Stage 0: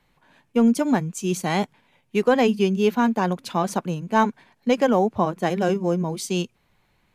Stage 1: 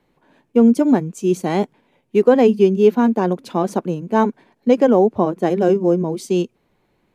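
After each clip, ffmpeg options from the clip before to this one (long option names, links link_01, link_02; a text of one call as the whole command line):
ffmpeg -i in.wav -af "equalizer=frequency=360:width_type=o:width=2:gain=13,volume=-4dB" out.wav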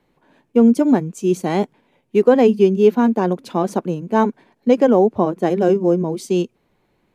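ffmpeg -i in.wav -af anull out.wav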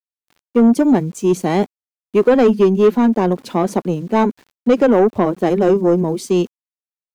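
ffmpeg -i in.wav -af "acontrast=89,aeval=exprs='val(0)*gte(abs(val(0)),0.0106)':channel_layout=same,volume=-3.5dB" out.wav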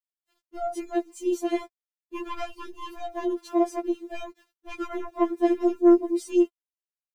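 ffmpeg -i in.wav -af "afftfilt=real='re*4*eq(mod(b,16),0)':imag='im*4*eq(mod(b,16),0)':win_size=2048:overlap=0.75,volume=-8.5dB" out.wav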